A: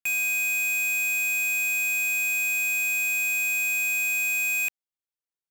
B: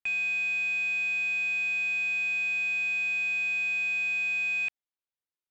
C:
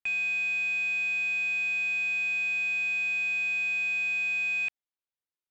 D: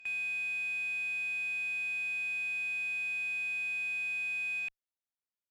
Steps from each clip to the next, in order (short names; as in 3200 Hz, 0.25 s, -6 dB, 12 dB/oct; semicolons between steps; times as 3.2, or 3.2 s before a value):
LPF 4400 Hz 24 dB/oct; gain -2.5 dB
nothing audible
pre-echo 88 ms -18.5 dB; added harmonics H 2 -37 dB, 4 -31 dB, 8 -42 dB, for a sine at -25 dBFS; gain -7 dB